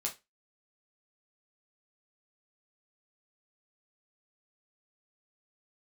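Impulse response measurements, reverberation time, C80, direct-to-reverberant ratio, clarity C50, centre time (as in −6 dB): 0.20 s, 23.0 dB, −0.5 dB, 14.0 dB, 14 ms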